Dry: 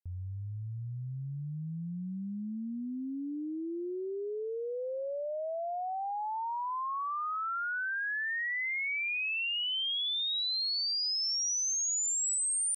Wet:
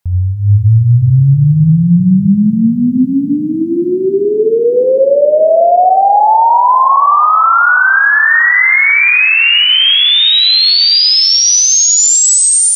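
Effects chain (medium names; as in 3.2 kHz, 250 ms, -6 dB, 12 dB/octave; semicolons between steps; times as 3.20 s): FFT filter 170 Hz 0 dB, 310 Hz -9 dB, 870 Hz +5 dB; echo that smears into a reverb 553 ms, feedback 47%, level -14 dB; on a send at -5 dB: reverberation RT60 0.80 s, pre-delay 42 ms; on the sum: level rider gain up to 7 dB; tilt shelf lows +4.5 dB, about 760 Hz; loudness maximiser +20.5 dB; trim -1 dB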